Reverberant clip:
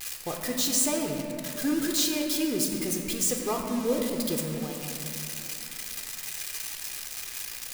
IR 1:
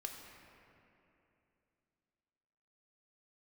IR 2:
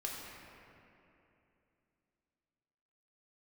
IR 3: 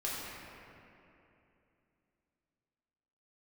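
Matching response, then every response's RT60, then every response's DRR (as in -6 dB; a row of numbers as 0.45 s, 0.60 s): 1; 2.9 s, 2.9 s, 2.9 s; 1.5 dB, -3.0 dB, -7.0 dB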